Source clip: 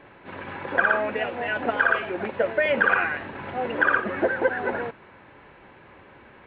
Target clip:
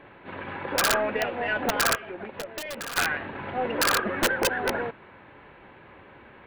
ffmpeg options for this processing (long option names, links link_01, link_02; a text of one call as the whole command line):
ffmpeg -i in.wav -filter_complex "[0:a]aeval=exprs='0.531*(cos(1*acos(clip(val(0)/0.531,-1,1)))-cos(1*PI/2))+0.00944*(cos(2*acos(clip(val(0)/0.531,-1,1)))-cos(2*PI/2))+0.0133*(cos(6*acos(clip(val(0)/0.531,-1,1)))-cos(6*PI/2))':channel_layout=same,aeval=exprs='(mod(5.62*val(0)+1,2)-1)/5.62':channel_layout=same,asplit=3[link_01][link_02][link_03];[link_01]afade=type=out:start_time=1.94:duration=0.02[link_04];[link_02]acompressor=threshold=-34dB:ratio=6,afade=type=in:start_time=1.94:duration=0.02,afade=type=out:start_time=2.96:duration=0.02[link_05];[link_03]afade=type=in:start_time=2.96:duration=0.02[link_06];[link_04][link_05][link_06]amix=inputs=3:normalize=0" out.wav